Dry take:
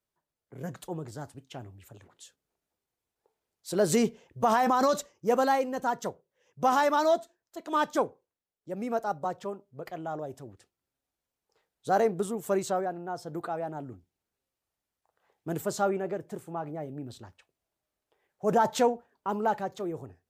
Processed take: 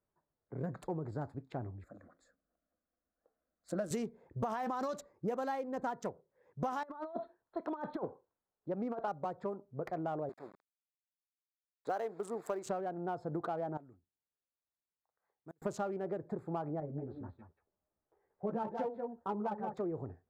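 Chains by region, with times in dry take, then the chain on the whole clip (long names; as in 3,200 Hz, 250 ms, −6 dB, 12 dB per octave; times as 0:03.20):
0:01.84–0:03.91: low-pass filter 11,000 Hz + phaser with its sweep stopped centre 600 Hz, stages 8
0:06.83–0:09.08: compressor whose output falls as the input rises −31 dBFS, ratio −0.5 + Chebyshev low-pass with heavy ripple 4,300 Hz, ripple 6 dB + notch filter 1,200 Hz, Q 24
0:10.29–0:12.66: hold until the input has moved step −46 dBFS + Bessel high-pass filter 500 Hz
0:13.77–0:15.62: first-order pre-emphasis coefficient 0.9 + gate with flip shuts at −36 dBFS, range −32 dB
0:16.80–0:19.74: high-frequency loss of the air 400 metres + single-tap delay 182 ms −8.5 dB + string-ensemble chorus
whole clip: adaptive Wiener filter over 15 samples; high-shelf EQ 4,400 Hz −7 dB; downward compressor 12 to 1, threshold −37 dBFS; level +3.5 dB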